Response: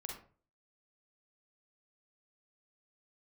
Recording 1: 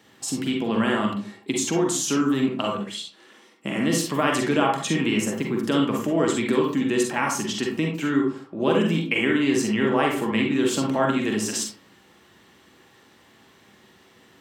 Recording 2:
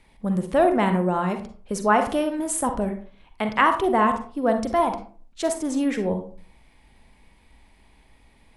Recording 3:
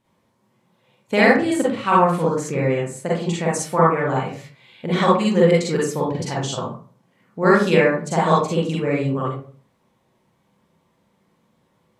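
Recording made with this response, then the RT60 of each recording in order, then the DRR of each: 1; 0.40, 0.40, 0.40 seconds; 0.0, 6.5, −6.0 decibels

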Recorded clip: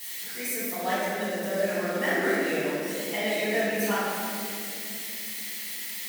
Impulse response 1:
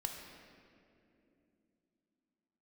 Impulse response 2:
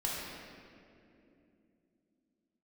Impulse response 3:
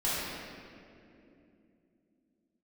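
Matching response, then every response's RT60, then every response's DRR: 3; 2.7, 2.8, 2.8 seconds; 1.5, −6.0, −11.5 decibels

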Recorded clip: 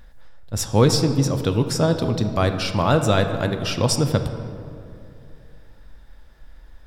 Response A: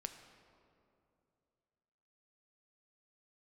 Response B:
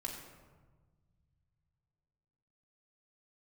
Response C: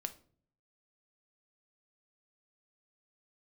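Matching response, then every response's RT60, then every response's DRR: A; 2.7, 1.4, 0.50 seconds; 6.5, −1.5, 8.0 decibels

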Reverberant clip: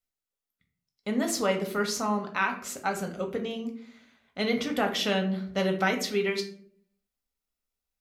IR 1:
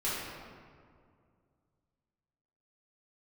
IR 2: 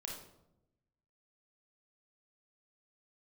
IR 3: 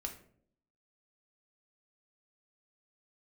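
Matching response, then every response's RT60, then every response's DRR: 3; 2.2, 0.85, 0.60 seconds; −10.5, −1.0, 3.0 decibels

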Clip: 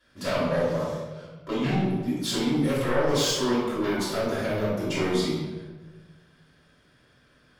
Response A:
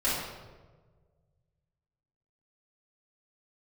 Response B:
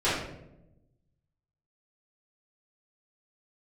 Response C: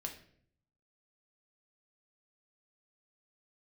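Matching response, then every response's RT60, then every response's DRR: A; 1.4, 0.90, 0.60 seconds; −10.5, −13.0, 2.0 decibels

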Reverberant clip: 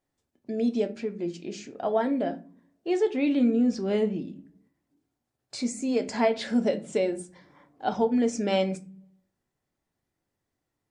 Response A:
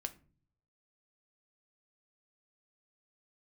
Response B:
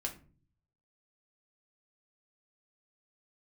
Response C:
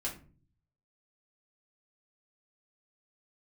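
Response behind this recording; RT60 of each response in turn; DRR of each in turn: A; 0.40, 0.40, 0.40 seconds; 7.5, 0.5, −5.0 decibels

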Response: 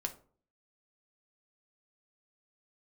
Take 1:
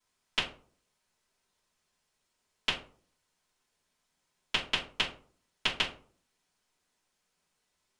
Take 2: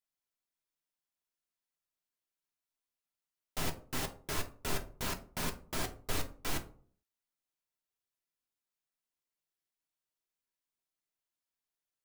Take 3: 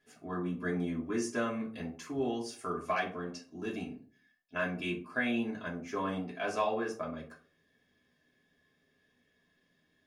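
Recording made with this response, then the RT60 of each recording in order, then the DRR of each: 2; 0.45, 0.45, 0.45 seconds; −14.5, 3.5, −5.0 decibels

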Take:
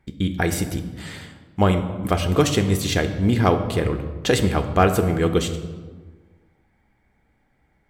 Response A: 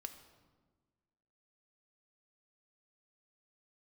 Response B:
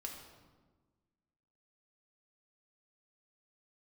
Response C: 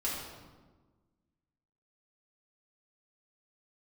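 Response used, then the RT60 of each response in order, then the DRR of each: A; 1.4, 1.4, 1.3 seconds; 7.0, 0.0, −7.5 decibels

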